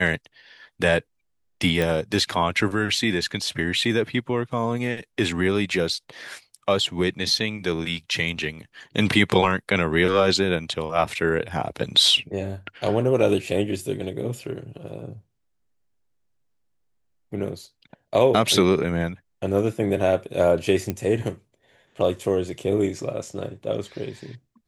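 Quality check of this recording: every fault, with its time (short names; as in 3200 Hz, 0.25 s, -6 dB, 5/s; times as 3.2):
1.82 pop
20.9 pop -12 dBFS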